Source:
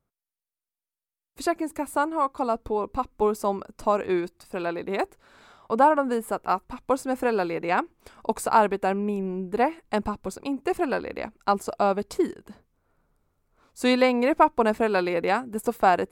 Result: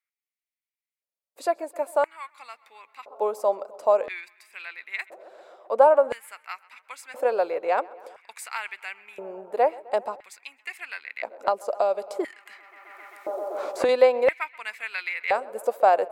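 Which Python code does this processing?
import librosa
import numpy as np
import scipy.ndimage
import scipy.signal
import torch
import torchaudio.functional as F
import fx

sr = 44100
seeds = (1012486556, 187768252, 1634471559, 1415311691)

y = fx.echo_tape(x, sr, ms=131, feedback_pct=84, wet_db=-21.5, lp_hz=3500.0, drive_db=6.0, wow_cents=13)
y = fx.filter_lfo_highpass(y, sr, shape='square', hz=0.49, low_hz=560.0, high_hz=2100.0, q=4.7)
y = fx.band_squash(y, sr, depth_pct=100, at=(11.39, 13.89))
y = F.gain(torch.from_numpy(y), -5.5).numpy()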